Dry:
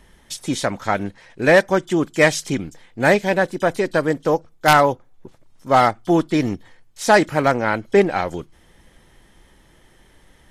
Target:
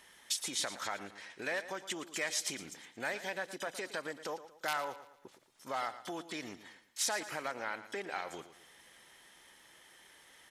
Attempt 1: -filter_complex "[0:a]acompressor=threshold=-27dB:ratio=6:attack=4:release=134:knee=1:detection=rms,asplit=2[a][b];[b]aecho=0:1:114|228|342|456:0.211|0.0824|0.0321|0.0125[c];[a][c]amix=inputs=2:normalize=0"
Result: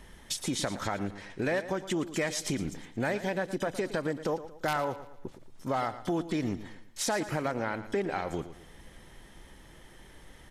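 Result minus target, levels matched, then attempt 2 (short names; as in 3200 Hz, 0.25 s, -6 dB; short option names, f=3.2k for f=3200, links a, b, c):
2000 Hz band -3.0 dB
-filter_complex "[0:a]acompressor=threshold=-27dB:ratio=6:attack=4:release=134:knee=1:detection=rms,highpass=f=1.5k:p=1,asplit=2[a][b];[b]aecho=0:1:114|228|342|456:0.211|0.0824|0.0321|0.0125[c];[a][c]amix=inputs=2:normalize=0"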